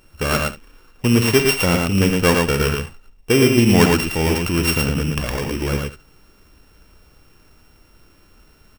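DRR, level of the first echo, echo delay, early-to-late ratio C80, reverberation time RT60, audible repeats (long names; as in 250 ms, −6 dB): no reverb audible, −11.0 dB, 51 ms, no reverb audible, no reverb audible, 3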